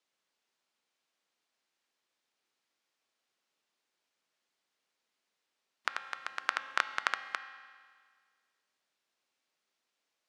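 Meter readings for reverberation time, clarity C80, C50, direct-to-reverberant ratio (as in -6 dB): 1.8 s, 12.0 dB, 11.0 dB, 9.5 dB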